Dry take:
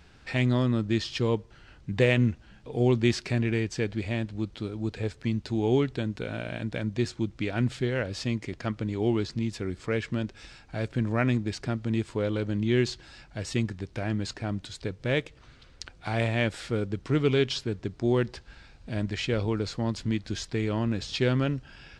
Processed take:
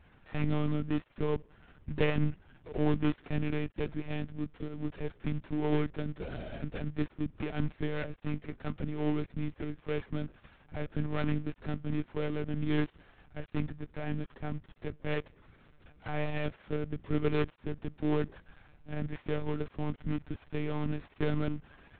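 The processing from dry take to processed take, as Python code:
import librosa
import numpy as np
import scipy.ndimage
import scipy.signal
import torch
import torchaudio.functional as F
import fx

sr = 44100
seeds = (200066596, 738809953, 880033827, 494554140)

y = fx.dead_time(x, sr, dead_ms=0.2)
y = scipy.signal.sosfilt(scipy.signal.butter(2, 3000.0, 'lowpass', fs=sr, output='sos'), y)
y = fx.lpc_monotone(y, sr, seeds[0], pitch_hz=150.0, order=16)
y = y * 10.0 ** (-4.5 / 20.0)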